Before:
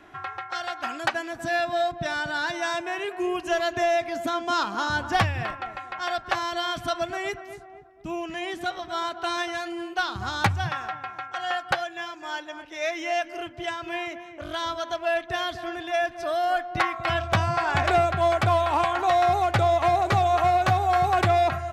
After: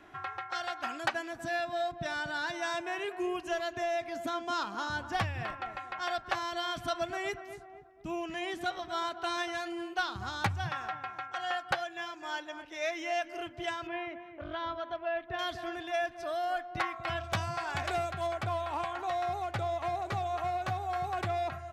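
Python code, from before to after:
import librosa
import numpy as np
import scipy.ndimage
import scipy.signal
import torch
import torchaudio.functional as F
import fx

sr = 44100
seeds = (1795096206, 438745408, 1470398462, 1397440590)

y = fx.high_shelf(x, sr, hz=3900.0, db=9.0, at=(17.24, 18.27))
y = fx.rider(y, sr, range_db=4, speed_s=0.5)
y = fx.air_absorb(y, sr, metres=340.0, at=(13.87, 15.39))
y = F.gain(torch.from_numpy(y), -8.5).numpy()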